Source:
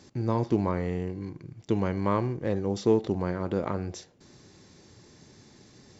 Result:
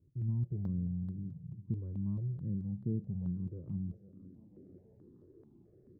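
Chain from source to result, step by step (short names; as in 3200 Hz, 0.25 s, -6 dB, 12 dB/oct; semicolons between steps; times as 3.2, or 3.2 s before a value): high shelf 3200 Hz +9.5 dB; on a send: feedback echo 0.495 s, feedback 56%, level -19.5 dB; on the sum: dynamic EQ 1300 Hz, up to -4 dB, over -45 dBFS, Q 2.3; low-pass sweep 160 Hz -> 360 Hz, 3.67–4.75; step phaser 4.6 Hz 760–3600 Hz; gain -6.5 dB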